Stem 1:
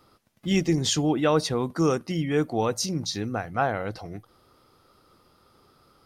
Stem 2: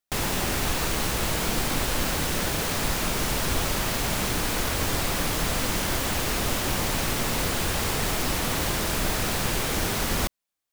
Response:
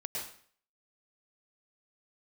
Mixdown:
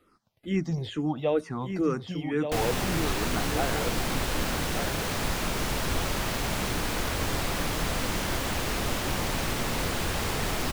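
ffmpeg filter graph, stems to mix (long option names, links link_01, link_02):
-filter_complex "[0:a]acrossover=split=2600[link_01][link_02];[link_02]acompressor=threshold=-41dB:ratio=4:attack=1:release=60[link_03];[link_01][link_03]amix=inputs=2:normalize=0,asplit=2[link_04][link_05];[link_05]afreqshift=-2.2[link_06];[link_04][link_06]amix=inputs=2:normalize=1,volume=-2dB,asplit=2[link_07][link_08];[link_08]volume=-7dB[link_09];[1:a]adelay=2400,volume=-2dB[link_10];[link_09]aecho=0:1:1179:1[link_11];[link_07][link_10][link_11]amix=inputs=3:normalize=0,highshelf=frequency=6100:gain=-6"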